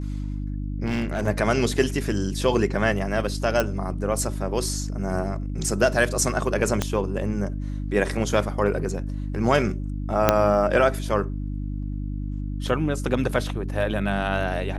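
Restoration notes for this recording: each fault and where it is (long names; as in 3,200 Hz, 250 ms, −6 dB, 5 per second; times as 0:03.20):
mains hum 50 Hz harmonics 6 −29 dBFS
0:00.85–0:01.28: clipping −21 dBFS
0:03.60: click
0:06.82: click −8 dBFS
0:10.29: click −1 dBFS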